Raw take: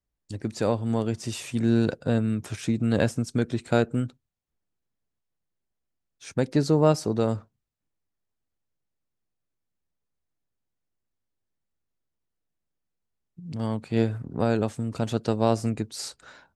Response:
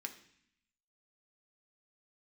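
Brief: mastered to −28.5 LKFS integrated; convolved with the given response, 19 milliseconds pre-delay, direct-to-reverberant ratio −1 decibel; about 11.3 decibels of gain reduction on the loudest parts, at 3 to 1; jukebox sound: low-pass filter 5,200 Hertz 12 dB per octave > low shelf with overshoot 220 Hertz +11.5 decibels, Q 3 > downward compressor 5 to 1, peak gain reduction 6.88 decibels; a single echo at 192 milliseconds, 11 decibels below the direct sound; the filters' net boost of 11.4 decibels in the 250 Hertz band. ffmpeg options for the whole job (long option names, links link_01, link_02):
-filter_complex "[0:a]equalizer=frequency=250:width_type=o:gain=7,acompressor=threshold=-28dB:ratio=3,aecho=1:1:192:0.282,asplit=2[link_01][link_02];[1:a]atrim=start_sample=2205,adelay=19[link_03];[link_02][link_03]afir=irnorm=-1:irlink=0,volume=3dB[link_04];[link_01][link_04]amix=inputs=2:normalize=0,lowpass=5200,lowshelf=frequency=220:width_type=q:width=3:gain=11.5,acompressor=threshold=-17dB:ratio=5,volume=-5.5dB"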